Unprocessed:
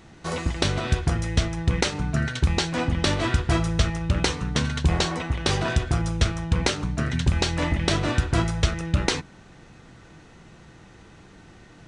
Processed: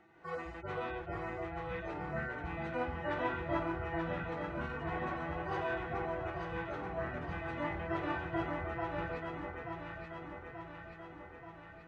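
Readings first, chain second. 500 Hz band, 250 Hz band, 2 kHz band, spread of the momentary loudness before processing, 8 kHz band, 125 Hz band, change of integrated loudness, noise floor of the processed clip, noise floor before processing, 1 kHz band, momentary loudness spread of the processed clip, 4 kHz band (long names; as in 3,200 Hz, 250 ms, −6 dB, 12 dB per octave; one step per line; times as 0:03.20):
−8.0 dB, −13.5 dB, −10.0 dB, 3 LU, below −35 dB, −20.0 dB, −14.5 dB, −52 dBFS, −50 dBFS, −6.5 dB, 11 LU, −26.0 dB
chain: harmonic-percussive split with one part muted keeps harmonic
three-way crossover with the lows and the highs turned down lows −16 dB, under 320 Hz, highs −23 dB, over 2,400 Hz
delay that swaps between a low-pass and a high-pass 441 ms, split 1,200 Hz, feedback 78%, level −2 dB
level −6 dB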